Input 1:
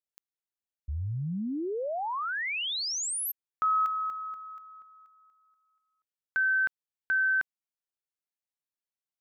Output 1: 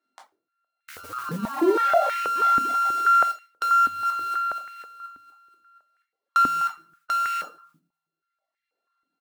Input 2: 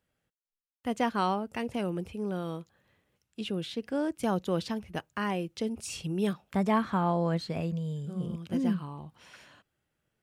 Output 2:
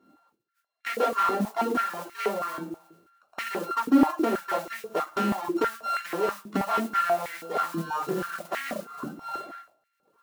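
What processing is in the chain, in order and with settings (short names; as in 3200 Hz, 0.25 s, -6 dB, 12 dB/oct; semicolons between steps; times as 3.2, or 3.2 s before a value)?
sample sorter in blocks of 32 samples; high shelf 8400 Hz -10.5 dB; notch 2600 Hz, Q 5.6; shoebox room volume 390 m³, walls furnished, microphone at 3.2 m; reverb removal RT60 1 s; high shelf 2100 Hz -9.5 dB; downsampling 22050 Hz; sine folder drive 4 dB, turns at -8 dBFS; compressor 10:1, threshold -30 dBFS; hard clip -29.5 dBFS; modulation noise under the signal 21 dB; stepped high-pass 6.2 Hz 270–2000 Hz; gain +6.5 dB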